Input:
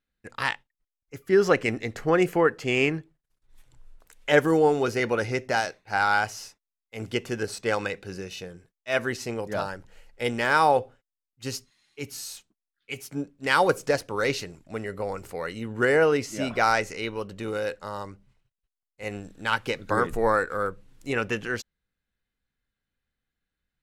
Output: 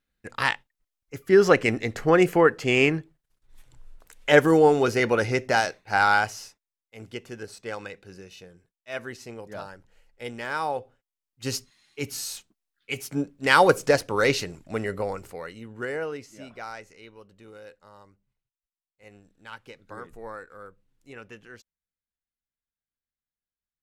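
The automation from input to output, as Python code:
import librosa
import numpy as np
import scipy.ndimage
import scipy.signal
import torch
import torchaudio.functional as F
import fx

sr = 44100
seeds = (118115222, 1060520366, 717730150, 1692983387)

y = fx.gain(x, sr, db=fx.line((6.08, 3.0), (7.08, -8.5), (10.81, -8.5), (11.55, 4.0), (14.92, 4.0), (15.54, -7.0), (16.7, -16.5)))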